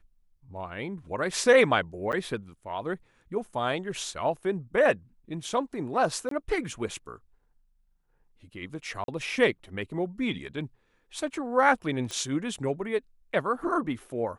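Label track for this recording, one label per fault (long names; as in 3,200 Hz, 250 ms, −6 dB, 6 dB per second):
2.120000	2.130000	drop-out 8.7 ms
6.290000	6.310000	drop-out 23 ms
9.040000	9.080000	drop-out 42 ms
12.110000	12.110000	click −21 dBFS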